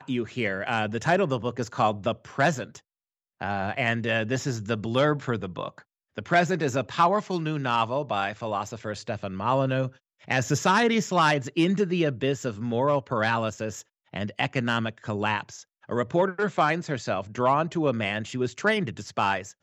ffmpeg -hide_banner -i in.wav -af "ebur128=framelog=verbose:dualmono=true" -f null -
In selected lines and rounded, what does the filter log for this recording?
Integrated loudness:
  I:         -23.2 LUFS
  Threshold: -33.5 LUFS
Loudness range:
  LRA:         3.8 LU
  Threshold: -43.5 LUFS
  LRA low:   -25.1 LUFS
  LRA high:  -21.3 LUFS